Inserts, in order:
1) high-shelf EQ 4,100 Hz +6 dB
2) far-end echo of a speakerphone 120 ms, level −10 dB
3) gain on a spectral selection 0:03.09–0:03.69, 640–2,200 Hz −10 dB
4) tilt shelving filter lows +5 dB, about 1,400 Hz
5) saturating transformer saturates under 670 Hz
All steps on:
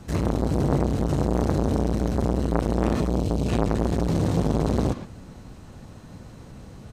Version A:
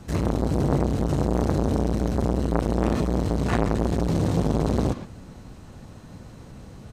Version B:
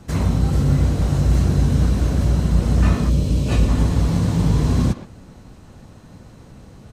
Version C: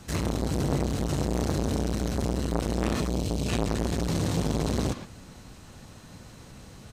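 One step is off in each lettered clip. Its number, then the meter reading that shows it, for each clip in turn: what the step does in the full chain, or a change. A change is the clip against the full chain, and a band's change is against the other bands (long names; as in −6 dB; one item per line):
3, 2 kHz band +1.5 dB
5, change in crest factor −6.0 dB
4, 8 kHz band +9.5 dB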